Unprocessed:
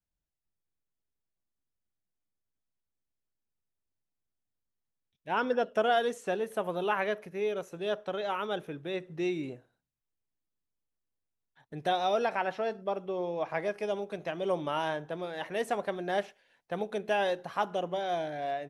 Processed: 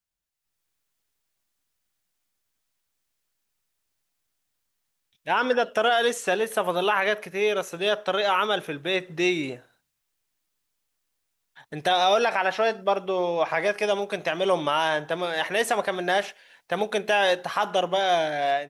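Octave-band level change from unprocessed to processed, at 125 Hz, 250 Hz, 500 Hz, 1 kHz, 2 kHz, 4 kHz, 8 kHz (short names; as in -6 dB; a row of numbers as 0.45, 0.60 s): +4.0 dB, +5.0 dB, +7.0 dB, +8.0 dB, +11.0 dB, +13.0 dB, n/a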